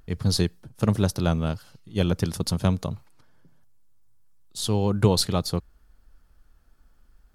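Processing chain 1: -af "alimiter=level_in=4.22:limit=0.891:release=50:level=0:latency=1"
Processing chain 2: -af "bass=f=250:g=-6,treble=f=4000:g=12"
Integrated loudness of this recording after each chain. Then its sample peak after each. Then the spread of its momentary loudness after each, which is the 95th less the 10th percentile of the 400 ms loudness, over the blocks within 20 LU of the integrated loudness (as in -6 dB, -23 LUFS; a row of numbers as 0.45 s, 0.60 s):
-15.0 LUFS, -23.5 LUFS; -1.0 dBFS, -2.0 dBFS; 10 LU, 16 LU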